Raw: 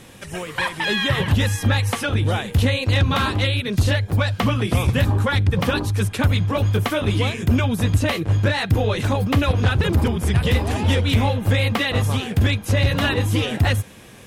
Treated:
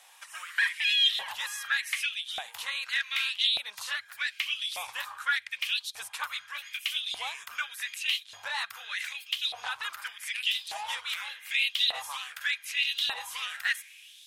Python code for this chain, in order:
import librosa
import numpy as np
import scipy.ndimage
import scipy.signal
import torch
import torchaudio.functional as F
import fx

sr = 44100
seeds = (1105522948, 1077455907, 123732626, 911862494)

y = fx.tone_stack(x, sr, knobs='10-0-10')
y = fx.filter_lfo_highpass(y, sr, shape='saw_up', hz=0.84, low_hz=700.0, high_hz=4000.0, q=4.5)
y = y * 10.0 ** (-6.5 / 20.0)